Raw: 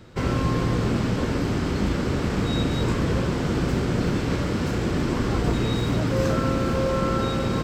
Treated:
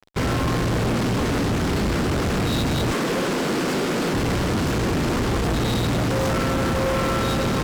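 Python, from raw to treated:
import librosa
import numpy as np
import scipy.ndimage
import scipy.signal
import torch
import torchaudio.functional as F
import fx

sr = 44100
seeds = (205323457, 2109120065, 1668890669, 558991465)

y = fx.bessel_highpass(x, sr, hz=270.0, order=8, at=(2.91, 4.14))
y = fx.fuzz(y, sr, gain_db=31.0, gate_db=-40.0)
y = y * librosa.db_to_amplitude(-6.5)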